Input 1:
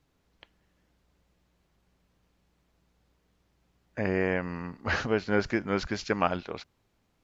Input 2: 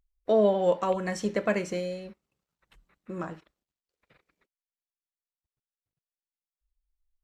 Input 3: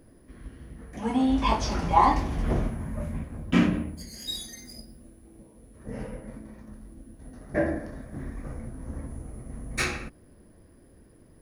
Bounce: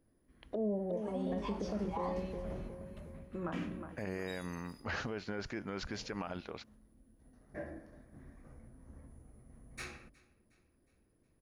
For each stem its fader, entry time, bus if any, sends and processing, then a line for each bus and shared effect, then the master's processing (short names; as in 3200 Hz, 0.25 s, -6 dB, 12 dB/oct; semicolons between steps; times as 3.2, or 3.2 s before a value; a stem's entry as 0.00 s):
-6.0 dB, 0.00 s, no send, no echo send, gate with hold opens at -58 dBFS; limiter -19.5 dBFS, peak gain reduction 10.5 dB
-4.0 dB, 0.25 s, no send, echo send -9 dB, treble ducked by the level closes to 320 Hz, closed at -24 dBFS
-17.5 dB, 0.00 s, no send, echo send -23.5 dB, de-hum 46.71 Hz, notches 14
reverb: off
echo: feedback echo 0.363 s, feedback 48%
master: limiter -28 dBFS, peak gain reduction 9 dB